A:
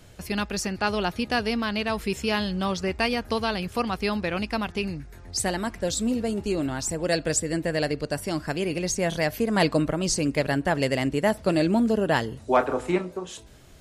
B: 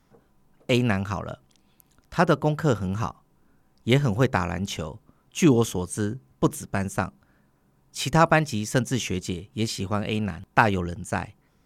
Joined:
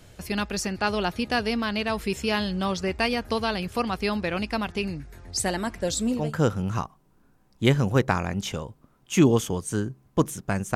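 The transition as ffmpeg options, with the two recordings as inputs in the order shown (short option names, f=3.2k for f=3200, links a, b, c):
-filter_complex "[0:a]apad=whole_dur=10.75,atrim=end=10.75,atrim=end=6.36,asetpts=PTS-STARTPTS[a];[1:a]atrim=start=2.35:end=7,asetpts=PTS-STARTPTS[b];[a][b]acrossfade=d=0.26:c1=tri:c2=tri"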